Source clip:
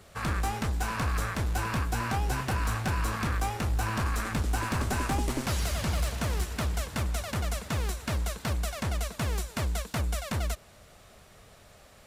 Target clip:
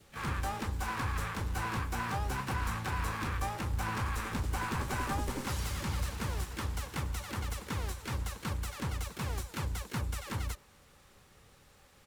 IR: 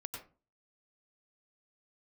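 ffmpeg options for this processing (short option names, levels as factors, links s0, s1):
-filter_complex "[0:a]asuperstop=centerf=660:order=12:qfactor=4.4,adynamicequalizer=threshold=0.00447:dfrequency=990:dqfactor=2.3:tfrequency=990:tqfactor=2.3:attack=5:release=100:ratio=0.375:range=2.5:mode=boostabove:tftype=bell,asplit=4[s0][s1][s2][s3];[s1]asetrate=33038,aresample=44100,atempo=1.33484,volume=0.224[s4];[s2]asetrate=66075,aresample=44100,atempo=0.66742,volume=0.447[s5];[s3]asetrate=88200,aresample=44100,atempo=0.5,volume=0.224[s6];[s0][s4][s5][s6]amix=inputs=4:normalize=0,volume=0.447"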